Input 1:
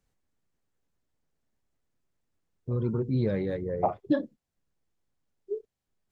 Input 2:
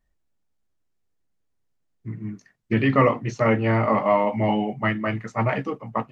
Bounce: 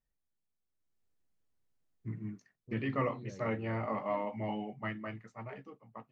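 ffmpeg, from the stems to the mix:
ffmpeg -i stem1.wav -i stem2.wav -filter_complex "[0:a]alimiter=limit=-22dB:level=0:latency=1,volume=-18.5dB[link_01];[1:a]volume=-5dB,afade=type=in:start_time=0.69:duration=0.34:silence=0.334965,afade=type=out:start_time=1.9:duration=0.71:silence=0.316228,afade=type=out:start_time=4.98:duration=0.44:silence=0.421697[link_02];[link_01][link_02]amix=inputs=2:normalize=0" out.wav

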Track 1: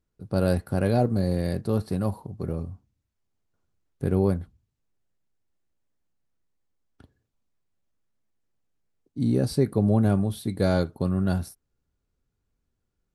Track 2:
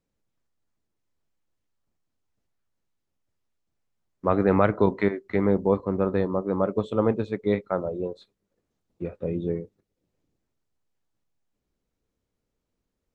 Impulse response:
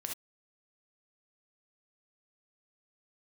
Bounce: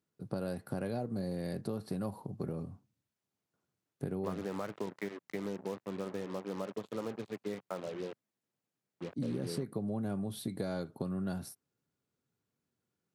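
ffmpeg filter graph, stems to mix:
-filter_complex "[0:a]acompressor=threshold=-28dB:ratio=4,volume=-2dB[link_01];[1:a]acompressor=threshold=-25dB:ratio=4,acrusher=bits=5:mix=0:aa=0.5,volume=-9dB[link_02];[link_01][link_02]amix=inputs=2:normalize=0,highpass=frequency=120:width=0.5412,highpass=frequency=120:width=1.3066,acompressor=threshold=-32dB:ratio=4"

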